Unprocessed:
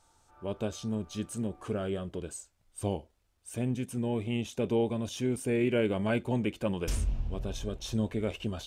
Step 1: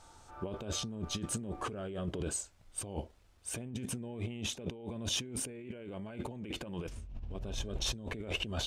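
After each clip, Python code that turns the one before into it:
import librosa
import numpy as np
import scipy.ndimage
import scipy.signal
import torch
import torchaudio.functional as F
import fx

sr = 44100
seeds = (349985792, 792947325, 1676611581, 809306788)

y = fx.high_shelf(x, sr, hz=10000.0, db=-10.0)
y = fx.over_compress(y, sr, threshold_db=-41.0, ratio=-1.0)
y = F.gain(torch.from_numpy(y), 1.0).numpy()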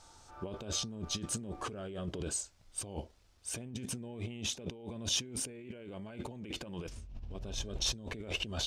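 y = fx.peak_eq(x, sr, hz=5200.0, db=6.5, octaves=1.1)
y = F.gain(torch.from_numpy(y), -2.0).numpy()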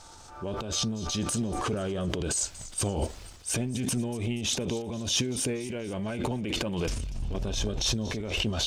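y = fx.transient(x, sr, attack_db=-6, sustain_db=10)
y = fx.rider(y, sr, range_db=3, speed_s=0.5)
y = fx.echo_wet_highpass(y, sr, ms=239, feedback_pct=50, hz=2700.0, wet_db=-15.5)
y = F.gain(torch.from_numpy(y), 9.0).numpy()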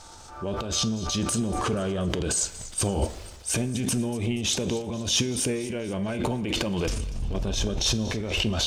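y = fx.rev_fdn(x, sr, rt60_s=1.2, lf_ratio=0.75, hf_ratio=0.65, size_ms=90.0, drr_db=12.0)
y = F.gain(torch.from_numpy(y), 3.0).numpy()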